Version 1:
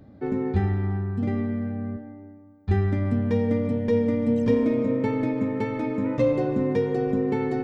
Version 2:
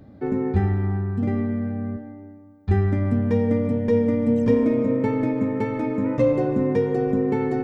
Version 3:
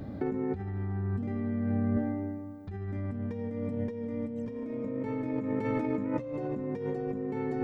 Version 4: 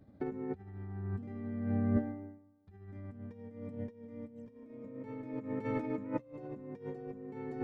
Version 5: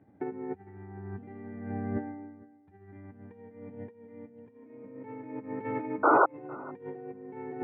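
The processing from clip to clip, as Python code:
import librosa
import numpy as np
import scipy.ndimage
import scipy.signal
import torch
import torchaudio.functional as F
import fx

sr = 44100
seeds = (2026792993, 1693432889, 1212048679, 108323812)

y1 = fx.dynamic_eq(x, sr, hz=3800.0, q=1.2, threshold_db=-55.0, ratio=4.0, max_db=-6)
y1 = y1 * librosa.db_to_amplitude(2.5)
y2 = fx.over_compress(y1, sr, threshold_db=-31.0, ratio=-1.0)
y2 = y2 * librosa.db_to_amplitude(-2.0)
y3 = fx.upward_expand(y2, sr, threshold_db=-42.0, expansion=2.5)
y3 = y3 * librosa.db_to_amplitude(1.0)
y4 = fx.cabinet(y3, sr, low_hz=150.0, low_slope=12, high_hz=2400.0, hz=(150.0, 230.0, 580.0, 830.0, 1200.0), db=(-5, -8, -9, 5, -7))
y4 = fx.spec_paint(y4, sr, seeds[0], shape='noise', start_s=6.03, length_s=0.23, low_hz=290.0, high_hz=1500.0, level_db=-25.0)
y4 = y4 + 10.0 ** (-22.5 / 20.0) * np.pad(y4, (int(456 * sr / 1000.0), 0))[:len(y4)]
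y4 = y4 * librosa.db_to_amplitude(4.5)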